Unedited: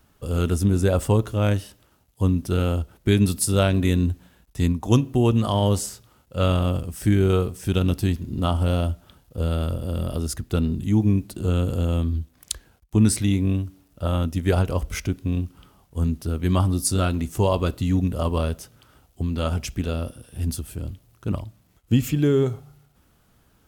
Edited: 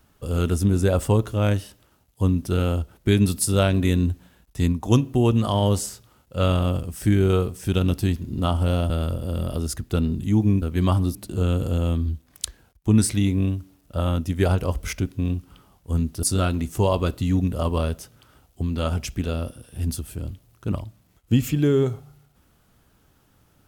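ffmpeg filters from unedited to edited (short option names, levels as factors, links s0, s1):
-filter_complex "[0:a]asplit=5[s0][s1][s2][s3][s4];[s0]atrim=end=8.902[s5];[s1]atrim=start=9.498:end=11.222[s6];[s2]atrim=start=16.298:end=16.832[s7];[s3]atrim=start=11.218:end=16.302[s8];[s4]atrim=start=16.828[s9];[s5][s6]acrossfade=d=0.004:c1=hsin:c2=hsin[s10];[s10][s7]acrossfade=d=0.004:c1=hsin:c2=hsin[s11];[s11][s8]acrossfade=d=0.004:c1=hsin:c2=hsin[s12];[s12][s9]acrossfade=d=0.004:c1=hsin:c2=hsin"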